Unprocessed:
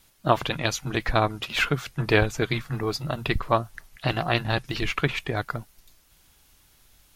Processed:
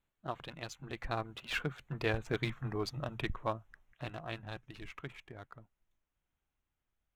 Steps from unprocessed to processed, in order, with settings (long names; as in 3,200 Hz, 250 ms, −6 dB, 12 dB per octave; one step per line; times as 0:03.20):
adaptive Wiener filter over 9 samples
source passing by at 0:02.37, 13 m/s, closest 2.8 metres
speech leveller within 5 dB 0.5 s
level −4 dB